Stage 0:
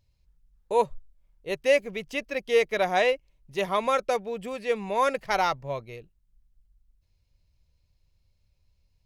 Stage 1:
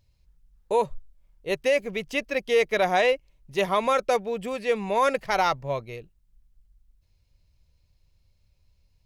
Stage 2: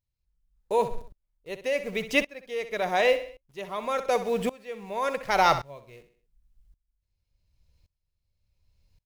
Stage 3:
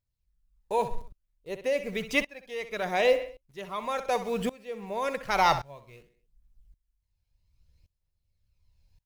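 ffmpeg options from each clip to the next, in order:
ffmpeg -i in.wav -af "alimiter=limit=-16dB:level=0:latency=1:release=45,volume=3.5dB" out.wav
ffmpeg -i in.wav -filter_complex "[0:a]asplit=2[link_01][link_02];[link_02]acrusher=bits=6:mix=0:aa=0.000001,volume=-5dB[link_03];[link_01][link_03]amix=inputs=2:normalize=0,aecho=1:1:64|128|192|256:0.224|0.0873|0.0341|0.0133,aeval=exprs='val(0)*pow(10,-24*if(lt(mod(-0.89*n/s,1),2*abs(-0.89)/1000),1-mod(-0.89*n/s,1)/(2*abs(-0.89)/1000),(mod(-0.89*n/s,1)-2*abs(-0.89)/1000)/(1-2*abs(-0.89)/1000))/20)':channel_layout=same,volume=2dB" out.wav
ffmpeg -i in.wav -af "aphaser=in_gain=1:out_gain=1:delay=1.3:decay=0.33:speed=0.62:type=triangular,volume=-2dB" out.wav

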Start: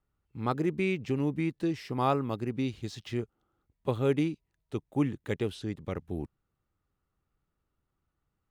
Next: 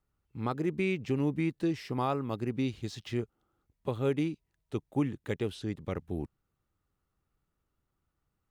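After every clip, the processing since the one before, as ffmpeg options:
ffmpeg -i in.wav -af "alimiter=limit=-19.5dB:level=0:latency=1:release=361" out.wav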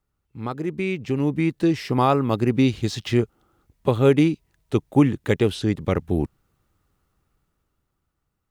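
ffmpeg -i in.wav -af "dynaudnorm=framelen=280:gausssize=11:maxgain=10dB,volume=3dB" out.wav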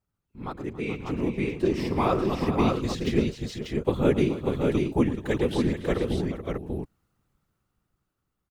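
ffmpeg -i in.wav -af "afftfilt=real='hypot(re,im)*cos(2*PI*random(0))':imag='hypot(re,im)*sin(2*PI*random(1))':win_size=512:overlap=0.75,aecho=1:1:111|278|429|553|590:0.188|0.15|0.299|0.106|0.668" out.wav

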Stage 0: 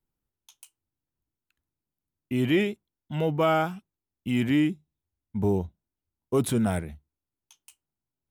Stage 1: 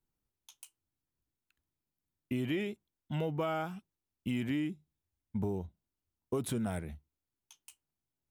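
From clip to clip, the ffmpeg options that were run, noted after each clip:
ffmpeg -i in.wav -af "acompressor=threshold=-29dB:ratio=6,volume=-2dB" out.wav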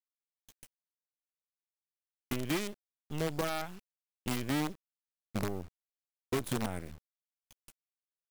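ffmpeg -i in.wav -af "acrusher=bits=6:dc=4:mix=0:aa=0.000001" out.wav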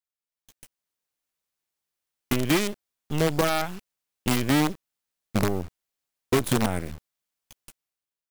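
ffmpeg -i in.wav -af "dynaudnorm=framelen=200:gausssize=7:maxgain=10.5dB" out.wav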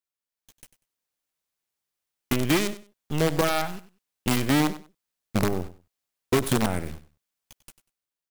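ffmpeg -i in.wav -af "aecho=1:1:96|192:0.168|0.0319" out.wav

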